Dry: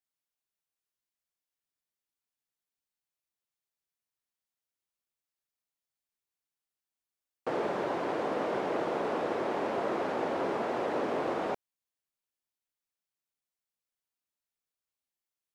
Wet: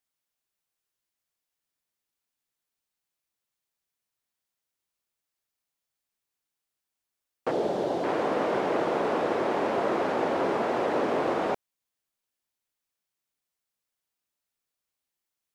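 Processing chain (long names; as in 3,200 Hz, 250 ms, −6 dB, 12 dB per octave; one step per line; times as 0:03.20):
0:07.51–0:08.04: flat-topped bell 1,600 Hz −9.5 dB
level +5 dB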